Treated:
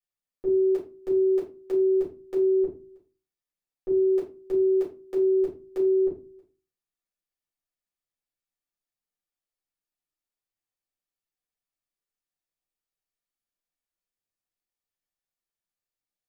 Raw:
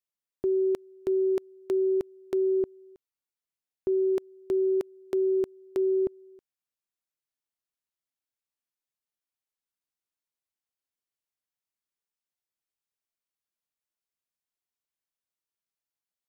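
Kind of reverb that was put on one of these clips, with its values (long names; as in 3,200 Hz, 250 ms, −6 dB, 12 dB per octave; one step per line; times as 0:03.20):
rectangular room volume 140 cubic metres, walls furnished, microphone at 4.2 metres
level −10.5 dB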